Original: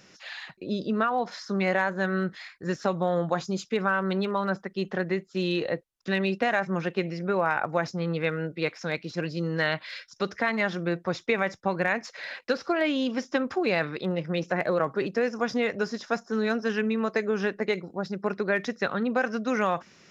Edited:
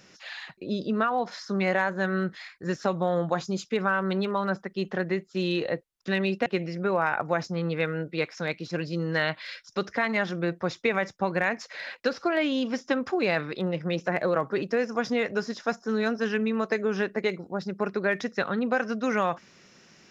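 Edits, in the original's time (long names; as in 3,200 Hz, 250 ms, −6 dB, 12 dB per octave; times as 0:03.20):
0:06.46–0:06.90: remove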